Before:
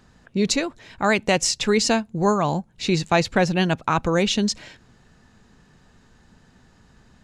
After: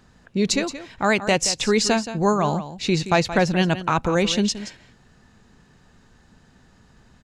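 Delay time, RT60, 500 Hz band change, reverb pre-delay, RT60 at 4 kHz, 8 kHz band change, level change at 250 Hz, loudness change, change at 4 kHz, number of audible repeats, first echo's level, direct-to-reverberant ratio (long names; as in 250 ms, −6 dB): 174 ms, no reverb audible, +0.5 dB, no reverb audible, no reverb audible, +0.5 dB, +0.5 dB, +0.5 dB, 0.0 dB, 1, −12.5 dB, no reverb audible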